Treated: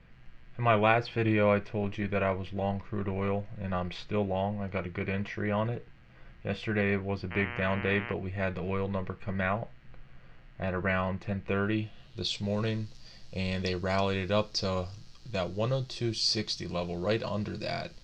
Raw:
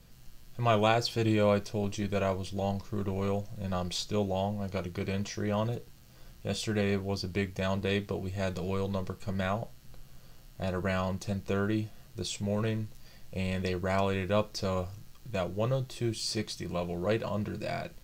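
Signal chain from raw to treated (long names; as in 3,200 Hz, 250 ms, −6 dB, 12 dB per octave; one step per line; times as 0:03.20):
0:07.30–0:08.12: hum with harmonics 120 Hz, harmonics 26, −43 dBFS −1 dB per octave
low-pass filter sweep 2,100 Hz → 4,900 Hz, 0:11.41–0:12.54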